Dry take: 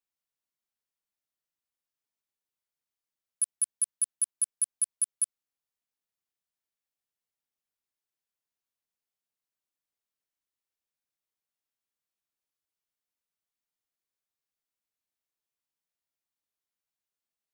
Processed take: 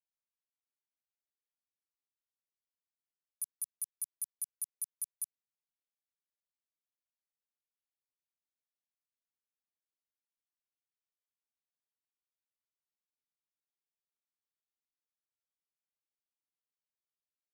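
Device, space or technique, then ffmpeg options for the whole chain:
over-cleaned archive recording: -af "highpass=120,lowpass=5900,afwtdn=0.00251,volume=2dB"

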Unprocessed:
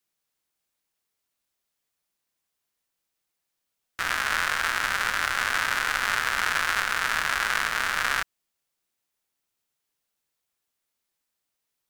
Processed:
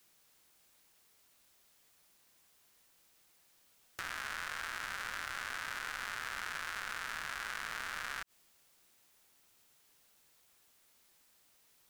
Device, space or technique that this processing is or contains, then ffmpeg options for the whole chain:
de-esser from a sidechain: -filter_complex "[0:a]asplit=2[link_01][link_02];[link_02]highpass=4500,apad=whole_len=524764[link_03];[link_01][link_03]sidechaincompress=threshold=-58dB:ratio=8:attack=2.1:release=49,volume=13dB"

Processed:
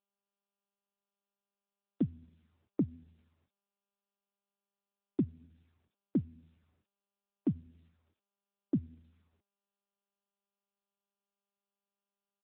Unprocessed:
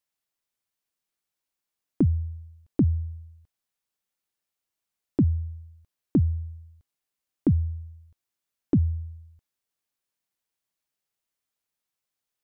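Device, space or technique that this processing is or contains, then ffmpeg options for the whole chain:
mobile call with aggressive noise cancelling: -filter_complex "[0:a]asplit=3[link_01][link_02][link_03];[link_01]afade=type=out:start_time=5.39:duration=0.02[link_04];[link_02]asplit=2[link_05][link_06];[link_06]adelay=49,volume=-13dB[link_07];[link_05][link_07]amix=inputs=2:normalize=0,afade=type=in:start_time=5.39:duration=0.02,afade=type=out:start_time=6.18:duration=0.02[link_08];[link_03]afade=type=in:start_time=6.18:duration=0.02[link_09];[link_04][link_08][link_09]amix=inputs=3:normalize=0,highpass=160,afftdn=noise_reduction=30:noise_floor=-56,volume=-7dB" -ar 8000 -c:a libopencore_amrnb -b:a 10200

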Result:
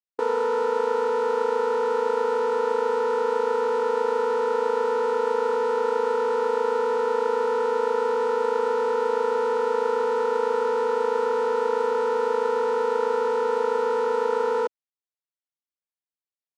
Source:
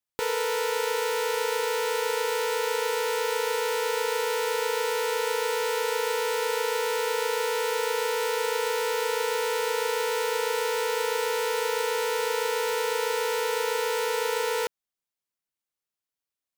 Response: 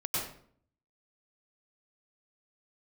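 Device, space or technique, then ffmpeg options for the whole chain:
over-cleaned archive recording: -af "highpass=130,lowpass=6600,afwtdn=0.0355,volume=5dB"

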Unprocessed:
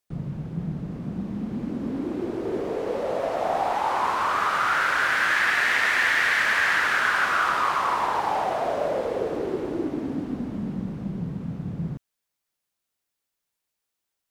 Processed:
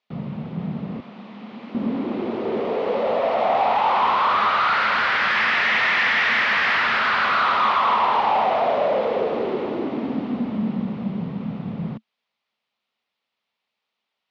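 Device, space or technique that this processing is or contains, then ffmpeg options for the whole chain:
overdrive pedal into a guitar cabinet: -filter_complex "[0:a]asplit=2[link_01][link_02];[link_02]highpass=frequency=720:poles=1,volume=16dB,asoftclip=type=tanh:threshold=-9dB[link_03];[link_01][link_03]amix=inputs=2:normalize=0,lowpass=frequency=7300:poles=1,volume=-6dB,highpass=78,equalizer=frequency=220:width_type=q:width=4:gain=9,equalizer=frequency=320:width_type=q:width=4:gain=-6,equalizer=frequency=1600:width_type=q:width=4:gain=-8,lowpass=frequency=3900:width=0.5412,lowpass=frequency=3900:width=1.3066,asettb=1/sr,asplit=3[link_04][link_05][link_06];[link_04]atrim=end=1.004[link_07];[link_05]atrim=start=1:end=1.75,asetpts=PTS-STARTPTS,afade=type=in:duration=0.004:curve=qsin,afade=type=out:start_time=0.746:duration=0.004:curve=qsin,highpass=frequency=1200:poles=1[link_08];[link_06]atrim=start=1.746[link_09];[link_07][link_08]acrossfade=duration=0.004:curve1=hsin:curve2=qsin[link_10];[link_10][link_09]acrossfade=duration=0.004:curve1=qsin:curve2=hsin"

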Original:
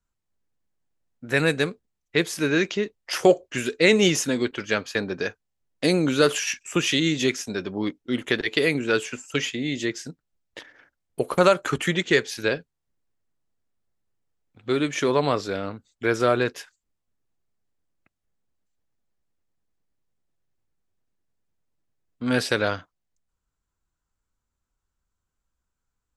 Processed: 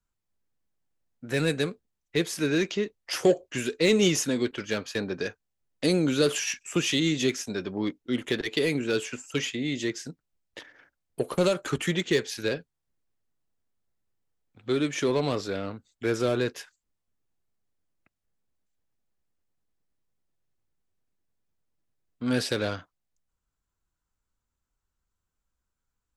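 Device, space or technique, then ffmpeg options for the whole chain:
one-band saturation: -filter_complex "[0:a]acrossover=split=550|2800[link_01][link_02][link_03];[link_02]asoftclip=type=tanh:threshold=-31dB[link_04];[link_01][link_04][link_03]amix=inputs=3:normalize=0,volume=-2dB"

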